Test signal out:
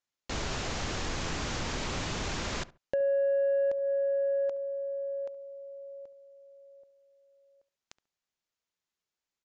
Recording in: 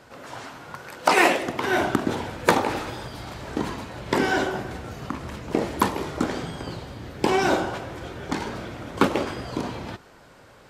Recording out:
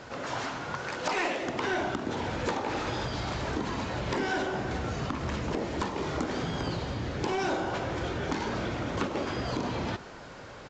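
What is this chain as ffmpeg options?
ffmpeg -i in.wav -filter_complex "[0:a]acompressor=threshold=-32dB:ratio=4,aresample=16000,asoftclip=type=tanh:threshold=-28dB,aresample=44100,asplit=2[link_01][link_02];[link_02]adelay=70,lowpass=frequency=1600:poles=1,volume=-17.5dB,asplit=2[link_03][link_04];[link_04]adelay=70,lowpass=frequency=1600:poles=1,volume=0.25[link_05];[link_01][link_03][link_05]amix=inputs=3:normalize=0,volume=5.5dB" out.wav

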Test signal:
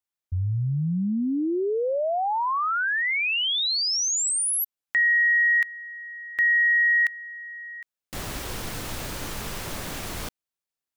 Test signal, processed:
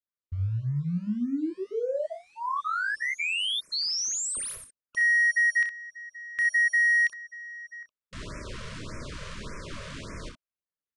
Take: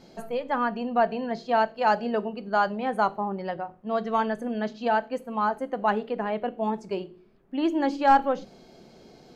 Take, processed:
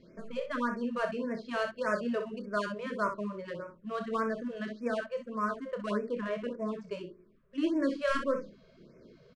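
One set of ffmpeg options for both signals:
ffmpeg -i in.wav -filter_complex "[0:a]asplit=2[link_01][link_02];[link_02]acrusher=bits=4:mode=log:mix=0:aa=0.000001,volume=-11.5dB[link_03];[link_01][link_03]amix=inputs=2:normalize=0,adynamicsmooth=sensitivity=7:basefreq=3200,asuperstop=centerf=790:order=8:qfactor=2.6,aecho=1:1:29|63:0.398|0.398,aresample=22050,aresample=44100,afftfilt=real='re*(1-between(b*sr/1024,260*pow(3700/260,0.5+0.5*sin(2*PI*1.7*pts/sr))/1.41,260*pow(3700/260,0.5+0.5*sin(2*PI*1.7*pts/sr))*1.41))':imag='im*(1-between(b*sr/1024,260*pow(3700/260,0.5+0.5*sin(2*PI*1.7*pts/sr))/1.41,260*pow(3700/260,0.5+0.5*sin(2*PI*1.7*pts/sr))*1.41))':win_size=1024:overlap=0.75,volume=-7dB" out.wav

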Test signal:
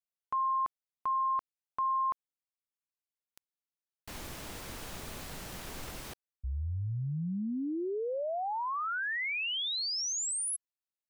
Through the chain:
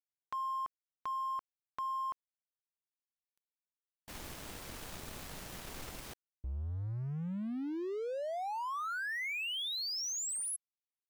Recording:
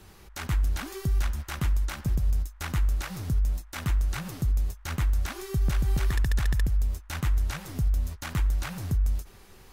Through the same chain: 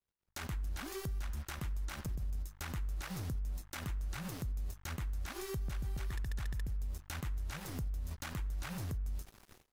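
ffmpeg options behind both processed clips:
ffmpeg -i in.wav -af "aeval=exprs='sgn(val(0))*max(abs(val(0))-0.00335,0)':channel_layout=same,agate=range=-33dB:threshold=-45dB:ratio=3:release=312:detection=rms,acompressor=threshold=-35dB:ratio=12:attack=0.86:release=169:knee=6:detection=peak,volume=1dB" out.wav

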